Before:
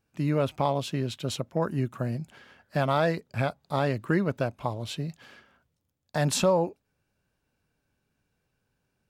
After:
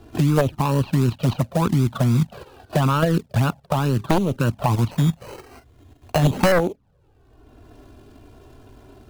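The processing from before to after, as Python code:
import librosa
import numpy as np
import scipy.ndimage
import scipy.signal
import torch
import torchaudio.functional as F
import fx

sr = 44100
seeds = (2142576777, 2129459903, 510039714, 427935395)

y = scipy.signal.medfilt(x, 25)
y = scipy.signal.sosfilt(scipy.signal.butter(4, 4700.0, 'lowpass', fs=sr, output='sos'), y)
y = fx.low_shelf(y, sr, hz=79.0, db=-2.5)
y = fx.notch(y, sr, hz=2100.0, q=5.3)
y = fx.level_steps(y, sr, step_db=12)
y = fx.quant_float(y, sr, bits=2)
y = fx.env_flanger(y, sr, rest_ms=2.9, full_db=-27.5)
y = fx.fold_sine(y, sr, drive_db=9, ceiling_db=-16.0)
y = fx.comb_fb(y, sr, f0_hz=400.0, decay_s=0.51, harmonics='all', damping=0.0, mix_pct=30, at=(3.73, 4.36))
y = fx.sample_hold(y, sr, seeds[0], rate_hz=3500.0, jitter_pct=0, at=(4.91, 6.52))
y = fx.band_squash(y, sr, depth_pct=70)
y = y * 10.0 ** (8.0 / 20.0)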